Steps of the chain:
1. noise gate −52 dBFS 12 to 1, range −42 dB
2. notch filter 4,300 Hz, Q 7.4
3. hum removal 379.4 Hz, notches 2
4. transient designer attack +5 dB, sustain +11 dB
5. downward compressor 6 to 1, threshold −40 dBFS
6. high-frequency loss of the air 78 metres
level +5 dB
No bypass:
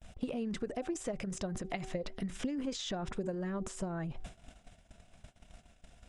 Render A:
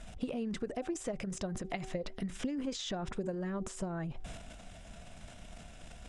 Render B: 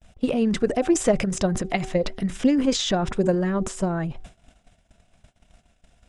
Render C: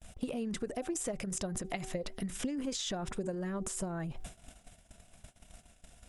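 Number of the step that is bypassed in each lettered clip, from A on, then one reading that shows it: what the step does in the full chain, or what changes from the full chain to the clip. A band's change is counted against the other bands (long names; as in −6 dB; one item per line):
1, change in momentary loudness spread +11 LU
5, average gain reduction 12.0 dB
6, 8 kHz band +7.0 dB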